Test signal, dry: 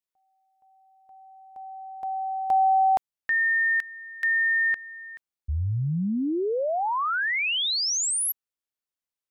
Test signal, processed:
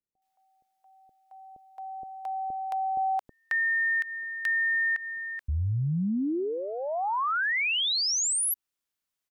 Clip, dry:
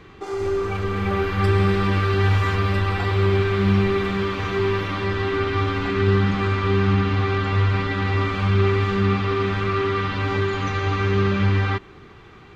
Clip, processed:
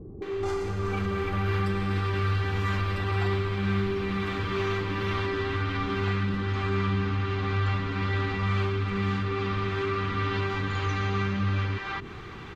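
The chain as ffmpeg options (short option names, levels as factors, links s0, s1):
-filter_complex "[0:a]asoftclip=type=hard:threshold=0.355,acompressor=threshold=0.0224:ratio=3:attack=3.2:release=103:knee=6:detection=rms,acrossover=split=530[s0][s1];[s1]adelay=220[s2];[s0][s2]amix=inputs=2:normalize=0,volume=1.88"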